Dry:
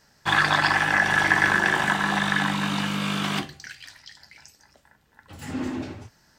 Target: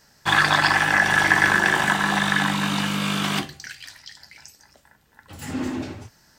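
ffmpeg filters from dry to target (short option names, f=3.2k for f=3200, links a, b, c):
-af "highshelf=f=6.6k:g=6,volume=2dB"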